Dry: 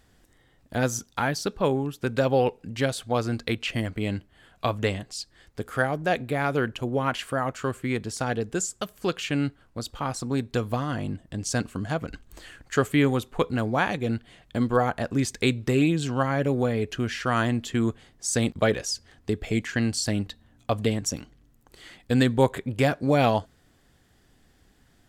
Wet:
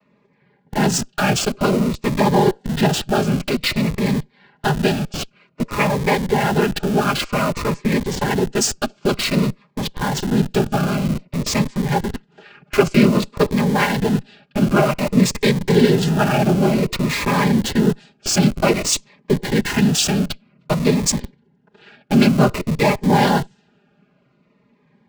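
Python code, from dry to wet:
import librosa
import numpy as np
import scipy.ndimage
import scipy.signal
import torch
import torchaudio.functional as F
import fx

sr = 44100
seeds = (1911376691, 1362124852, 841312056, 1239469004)

p1 = fx.noise_vocoder(x, sr, seeds[0], bands=8)
p2 = p1 + 0.9 * np.pad(p1, (int(4.9 * sr / 1000.0), 0))[:len(p1)]
p3 = fx.env_lowpass(p2, sr, base_hz=1700.0, full_db=-21.0)
p4 = fx.schmitt(p3, sr, flips_db=-33.5)
p5 = p3 + F.gain(torch.from_numpy(p4), -5.0).numpy()
p6 = fx.notch_cascade(p5, sr, direction='falling', hz=0.53)
y = F.gain(torch.from_numpy(p6), 5.0).numpy()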